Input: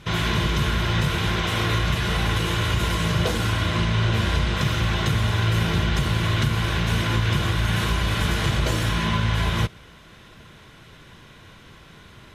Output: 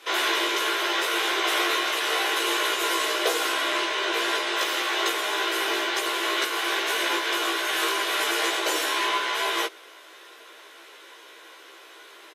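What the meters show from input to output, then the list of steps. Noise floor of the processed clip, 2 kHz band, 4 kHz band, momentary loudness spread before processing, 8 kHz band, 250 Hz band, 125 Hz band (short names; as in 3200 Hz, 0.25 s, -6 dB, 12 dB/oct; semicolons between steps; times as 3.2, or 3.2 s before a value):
-48 dBFS, +2.5 dB, +2.5 dB, 1 LU, +4.5 dB, -8.0 dB, under -40 dB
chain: steep high-pass 340 Hz 48 dB/oct; high shelf 9700 Hz +7.5 dB; doubler 15 ms -2 dB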